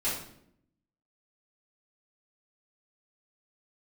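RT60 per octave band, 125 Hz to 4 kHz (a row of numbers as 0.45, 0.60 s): 1.0, 1.0, 0.80, 0.60, 0.60, 0.55 s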